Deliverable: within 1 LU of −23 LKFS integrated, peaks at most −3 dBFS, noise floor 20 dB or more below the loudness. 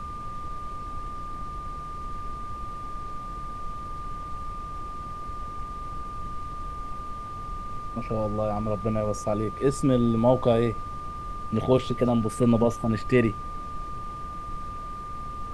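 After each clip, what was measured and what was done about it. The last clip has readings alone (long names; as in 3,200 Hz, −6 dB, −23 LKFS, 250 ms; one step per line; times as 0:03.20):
interfering tone 1,200 Hz; level of the tone −35 dBFS; background noise floor −37 dBFS; target noise floor −49 dBFS; integrated loudness −29.0 LKFS; sample peak −7.0 dBFS; target loudness −23.0 LKFS
→ notch filter 1,200 Hz, Q 30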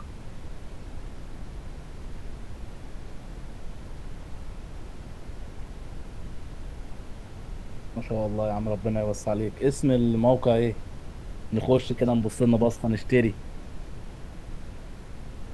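interfering tone none found; background noise floor −42 dBFS; target noise floor −46 dBFS
→ noise reduction from a noise print 6 dB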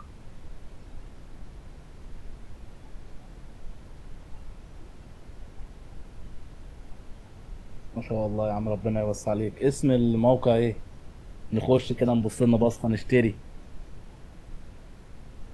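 background noise floor −48 dBFS; integrated loudness −25.5 LKFS; sample peak −7.5 dBFS; target loudness −23.0 LKFS
→ level +2.5 dB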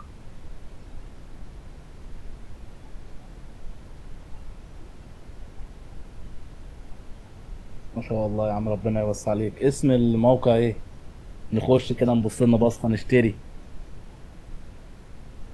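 integrated loudness −23.0 LKFS; sample peak −5.0 dBFS; background noise floor −45 dBFS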